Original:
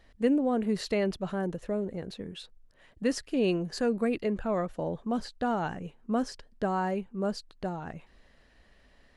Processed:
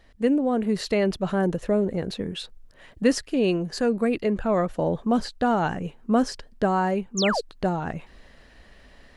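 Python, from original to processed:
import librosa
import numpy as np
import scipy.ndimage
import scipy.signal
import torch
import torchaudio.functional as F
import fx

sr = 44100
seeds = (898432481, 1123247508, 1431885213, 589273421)

y = fx.spec_paint(x, sr, seeds[0], shape='fall', start_s=7.17, length_s=0.24, low_hz=400.0, high_hz=7500.0, level_db=-33.0)
y = fx.rider(y, sr, range_db=3, speed_s=0.5)
y = F.gain(torch.from_numpy(y), 6.5).numpy()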